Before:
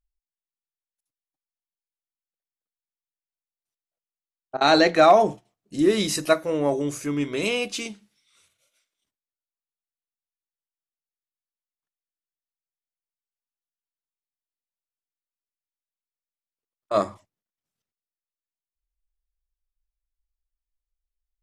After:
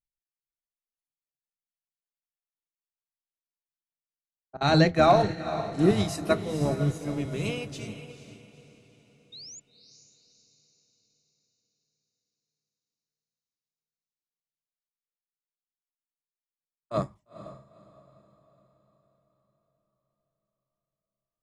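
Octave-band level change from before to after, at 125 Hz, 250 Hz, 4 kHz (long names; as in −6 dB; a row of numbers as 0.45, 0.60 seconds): +8.0, −2.0, −6.5 decibels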